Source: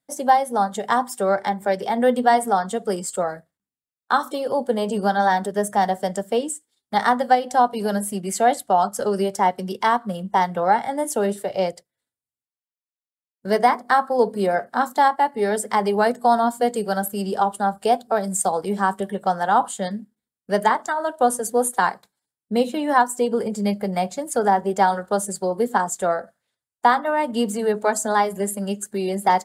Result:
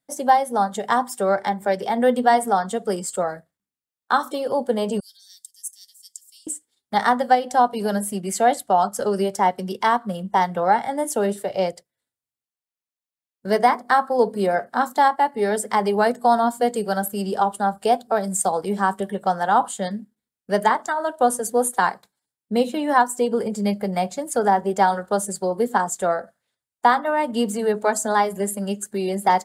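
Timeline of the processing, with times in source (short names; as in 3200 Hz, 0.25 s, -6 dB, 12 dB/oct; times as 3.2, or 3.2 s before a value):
5–6.47 inverse Chebyshev high-pass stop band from 1200 Hz, stop band 70 dB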